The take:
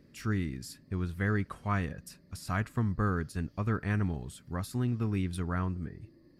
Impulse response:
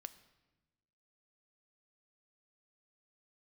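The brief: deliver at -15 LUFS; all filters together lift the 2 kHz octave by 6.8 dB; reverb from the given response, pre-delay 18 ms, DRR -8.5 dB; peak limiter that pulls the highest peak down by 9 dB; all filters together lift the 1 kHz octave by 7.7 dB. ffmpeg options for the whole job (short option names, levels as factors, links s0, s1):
-filter_complex "[0:a]equalizer=f=1000:t=o:g=8,equalizer=f=2000:t=o:g=5.5,alimiter=limit=0.0891:level=0:latency=1,asplit=2[s0][s1];[1:a]atrim=start_sample=2205,adelay=18[s2];[s1][s2]afir=irnorm=-1:irlink=0,volume=5.01[s3];[s0][s3]amix=inputs=2:normalize=0,volume=2.82"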